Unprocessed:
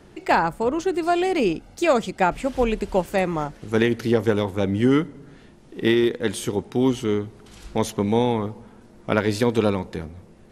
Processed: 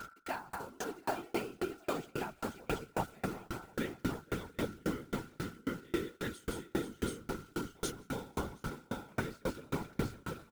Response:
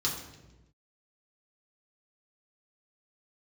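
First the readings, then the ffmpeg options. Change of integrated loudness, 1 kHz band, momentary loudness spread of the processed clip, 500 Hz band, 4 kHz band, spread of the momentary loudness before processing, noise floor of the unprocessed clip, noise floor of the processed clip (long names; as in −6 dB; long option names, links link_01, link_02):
−17.5 dB, −16.0 dB, 5 LU, −18.5 dB, −14.5 dB, 9 LU, −49 dBFS, −64 dBFS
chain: -af "areverse,acompressor=threshold=-33dB:ratio=6,areverse,acrusher=bits=7:mix=0:aa=0.000001,equalizer=frequency=550:width_type=o:width=0.24:gain=-11,aecho=1:1:171|249|488|729:0.376|0.1|0.266|0.596,aeval=exprs='val(0)+0.00562*sin(2*PI*1400*n/s)':channel_layout=same,afftfilt=real='hypot(re,im)*cos(2*PI*random(0))':imag='hypot(re,im)*sin(2*PI*random(1))':win_size=512:overlap=0.75,aeval=exprs='val(0)*pow(10,-34*if(lt(mod(3.7*n/s,1),2*abs(3.7)/1000),1-mod(3.7*n/s,1)/(2*abs(3.7)/1000),(mod(3.7*n/s,1)-2*abs(3.7)/1000)/(1-2*abs(3.7)/1000))/20)':channel_layout=same,volume=11dB"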